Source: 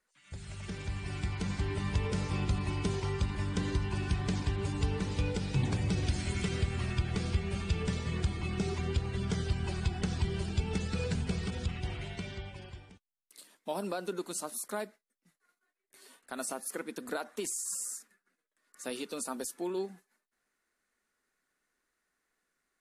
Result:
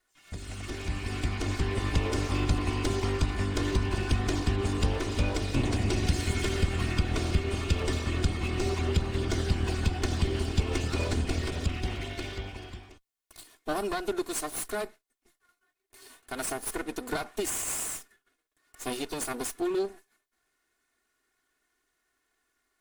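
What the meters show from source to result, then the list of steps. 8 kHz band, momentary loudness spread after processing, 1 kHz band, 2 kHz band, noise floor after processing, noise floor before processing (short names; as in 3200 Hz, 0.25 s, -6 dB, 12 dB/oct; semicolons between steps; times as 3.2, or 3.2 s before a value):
+4.0 dB, 8 LU, +5.5 dB, +5.5 dB, -79 dBFS, -84 dBFS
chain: minimum comb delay 2.8 ms; gain +6 dB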